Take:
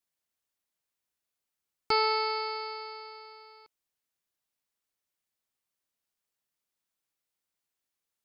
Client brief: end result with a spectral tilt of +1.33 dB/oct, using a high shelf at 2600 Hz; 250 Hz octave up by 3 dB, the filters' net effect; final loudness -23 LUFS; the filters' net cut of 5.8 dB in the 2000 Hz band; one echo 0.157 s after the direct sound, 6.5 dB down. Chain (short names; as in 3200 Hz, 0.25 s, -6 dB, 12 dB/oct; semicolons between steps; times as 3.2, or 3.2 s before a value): bell 250 Hz +4.5 dB; bell 2000 Hz -3.5 dB; high shelf 2600 Hz -6.5 dB; echo 0.157 s -6.5 dB; gain +7.5 dB